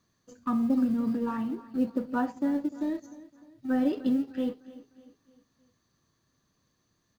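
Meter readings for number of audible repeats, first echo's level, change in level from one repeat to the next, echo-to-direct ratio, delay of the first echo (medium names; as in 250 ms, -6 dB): 3, -17.5 dB, -7.5 dB, -16.5 dB, 302 ms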